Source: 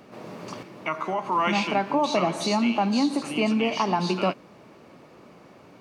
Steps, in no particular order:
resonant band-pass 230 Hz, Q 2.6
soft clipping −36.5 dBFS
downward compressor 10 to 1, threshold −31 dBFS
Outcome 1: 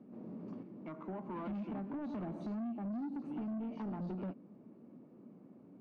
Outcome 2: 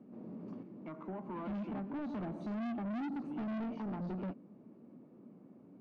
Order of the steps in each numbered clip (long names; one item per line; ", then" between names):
resonant band-pass, then downward compressor, then soft clipping
resonant band-pass, then soft clipping, then downward compressor